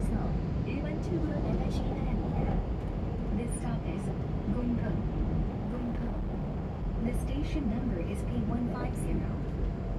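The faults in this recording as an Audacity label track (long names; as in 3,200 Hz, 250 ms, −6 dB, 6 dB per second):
5.620000	6.860000	clipping −30 dBFS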